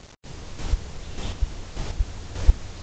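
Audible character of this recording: chopped level 1.7 Hz, depth 60%, duty 25%; a quantiser's noise floor 8-bit, dither none; Vorbis

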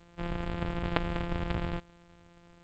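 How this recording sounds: a buzz of ramps at a fixed pitch in blocks of 256 samples; G.722

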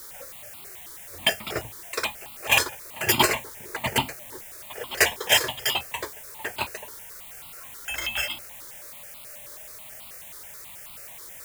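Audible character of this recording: a quantiser's noise floor 8-bit, dither triangular; notches that jump at a steady rate 9.3 Hz 720–1700 Hz

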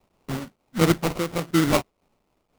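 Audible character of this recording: a quantiser's noise floor 12-bit, dither triangular; phasing stages 2, 2.7 Hz, lowest notch 360–1200 Hz; aliases and images of a low sample rate 1700 Hz, jitter 20%; noise-modulated level

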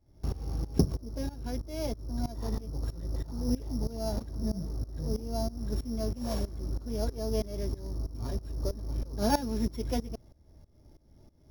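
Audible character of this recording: a buzz of ramps at a fixed pitch in blocks of 8 samples; tremolo saw up 3.1 Hz, depth 90%

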